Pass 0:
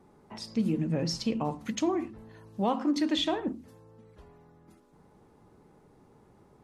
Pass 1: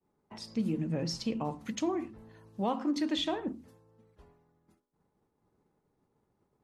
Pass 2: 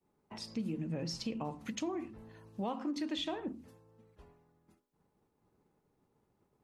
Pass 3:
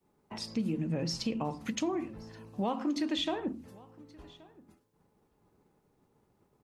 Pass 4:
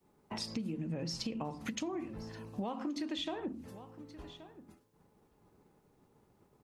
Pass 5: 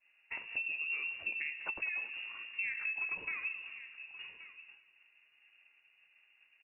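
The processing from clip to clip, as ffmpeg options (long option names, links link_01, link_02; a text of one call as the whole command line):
ffmpeg -i in.wav -af "agate=range=-33dB:threshold=-49dB:ratio=3:detection=peak,volume=-3.5dB" out.wav
ffmpeg -i in.wav -af "equalizer=frequency=2600:width=4.2:gain=3,acompressor=threshold=-38dB:ratio=2" out.wav
ffmpeg -i in.wav -af "aecho=1:1:1126:0.0668,volume=5dB" out.wav
ffmpeg -i in.wav -af "acompressor=threshold=-38dB:ratio=5,volume=2.5dB" out.wav
ffmpeg -i in.wav -af "aecho=1:1:194|388|582|776|970:0.2|0.102|0.0519|0.0265|0.0135,lowpass=frequency=2500:width_type=q:width=0.5098,lowpass=frequency=2500:width_type=q:width=0.6013,lowpass=frequency=2500:width_type=q:width=0.9,lowpass=frequency=2500:width_type=q:width=2.563,afreqshift=-2900" out.wav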